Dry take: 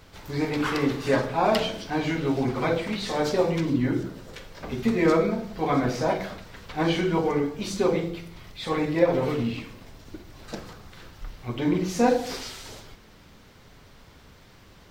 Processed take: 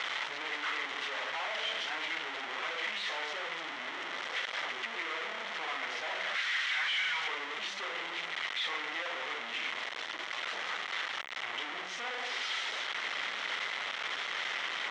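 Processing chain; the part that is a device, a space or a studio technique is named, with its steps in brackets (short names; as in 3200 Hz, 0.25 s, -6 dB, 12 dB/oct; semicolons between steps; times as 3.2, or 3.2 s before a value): 6.35–7.28 EQ curve 140 Hz 0 dB, 370 Hz -25 dB, 1700 Hz +12 dB; home computer beeper (infinite clipping; speaker cabinet 780–5100 Hz, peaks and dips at 1300 Hz +3 dB, 2000 Hz +9 dB, 3200 Hz +6 dB, 4700 Hz -7 dB); gain -8 dB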